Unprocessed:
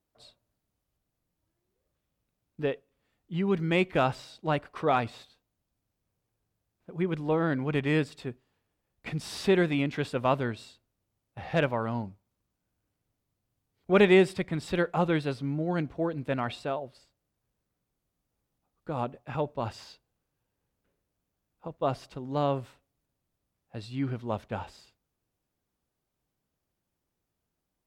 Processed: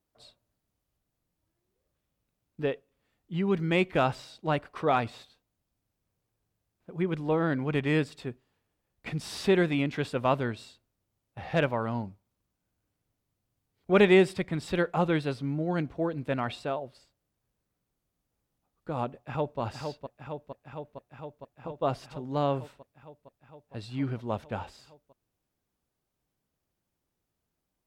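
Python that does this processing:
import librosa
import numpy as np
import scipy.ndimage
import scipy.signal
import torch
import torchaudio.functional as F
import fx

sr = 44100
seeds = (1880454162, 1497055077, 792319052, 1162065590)

y = fx.echo_throw(x, sr, start_s=19.11, length_s=0.49, ms=460, feedback_pct=80, wet_db=-6.0)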